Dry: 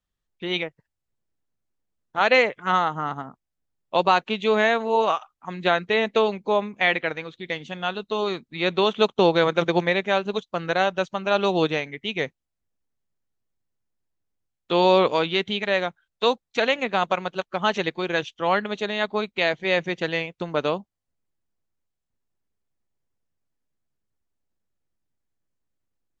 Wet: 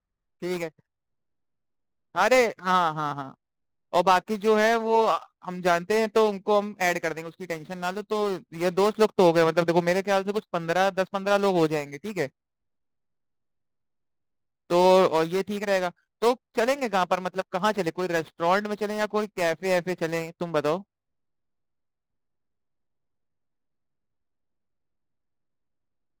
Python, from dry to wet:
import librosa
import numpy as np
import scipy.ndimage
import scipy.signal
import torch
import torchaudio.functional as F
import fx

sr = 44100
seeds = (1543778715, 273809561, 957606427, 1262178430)

y = scipy.signal.medfilt(x, 15)